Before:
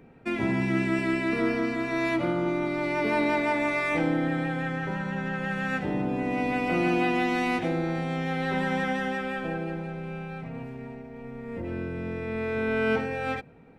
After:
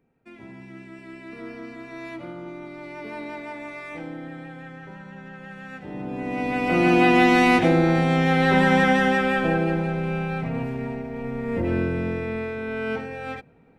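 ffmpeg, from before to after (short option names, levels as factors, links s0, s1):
-af "volume=2.99,afade=t=in:st=0.98:d=0.74:silence=0.473151,afade=t=in:st=5.8:d=0.75:silence=0.251189,afade=t=in:st=6.55:d=0.68:silence=0.421697,afade=t=out:st=11.77:d=0.8:silence=0.237137"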